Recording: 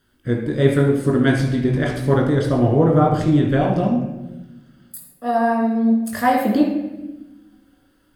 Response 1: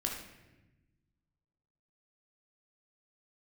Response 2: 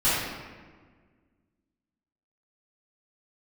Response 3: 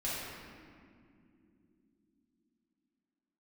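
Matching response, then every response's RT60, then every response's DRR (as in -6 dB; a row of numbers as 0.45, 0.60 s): 1; 1.1 s, 1.6 s, not exponential; -1.0, -16.0, -9.0 dB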